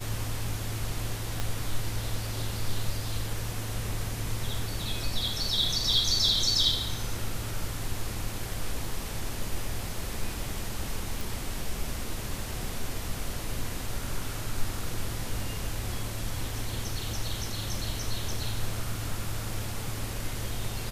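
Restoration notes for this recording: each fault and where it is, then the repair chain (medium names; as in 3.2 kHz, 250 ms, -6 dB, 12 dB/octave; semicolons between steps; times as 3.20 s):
1.40 s: pop -16 dBFS
11.21 s: pop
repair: de-click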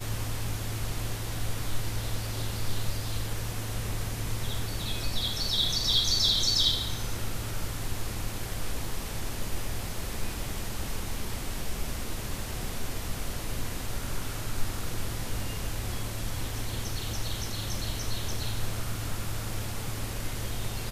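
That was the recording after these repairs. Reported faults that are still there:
1.40 s: pop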